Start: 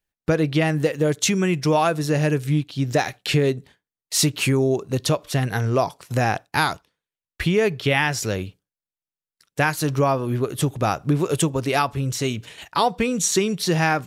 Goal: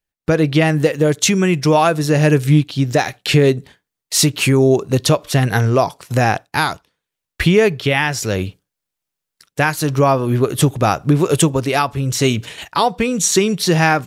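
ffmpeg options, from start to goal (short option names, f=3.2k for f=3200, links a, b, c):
-af "dynaudnorm=f=180:g=3:m=13dB,volume=-1dB"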